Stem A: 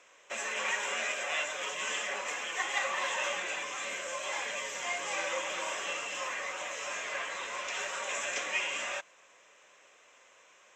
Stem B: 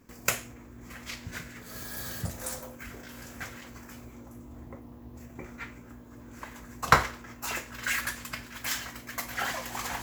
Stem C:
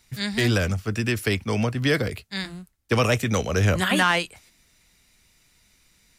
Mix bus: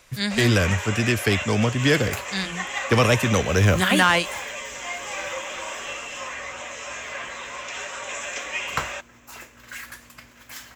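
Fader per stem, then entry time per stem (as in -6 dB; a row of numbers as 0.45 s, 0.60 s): +3.0 dB, -7.5 dB, +2.5 dB; 0.00 s, 1.85 s, 0.00 s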